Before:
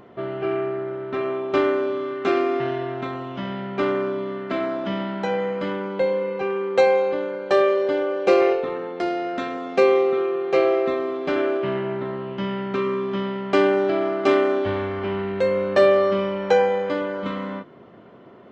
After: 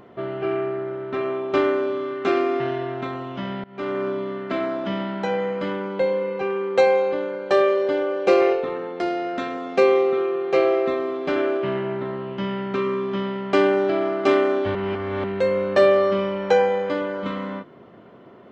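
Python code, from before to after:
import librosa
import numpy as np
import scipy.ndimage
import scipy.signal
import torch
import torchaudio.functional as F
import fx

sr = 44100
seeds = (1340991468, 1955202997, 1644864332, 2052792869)

y = fx.edit(x, sr, fx.fade_in_from(start_s=3.64, length_s=0.44, floor_db=-23.5),
    fx.reverse_span(start_s=14.75, length_s=0.49), tone=tone)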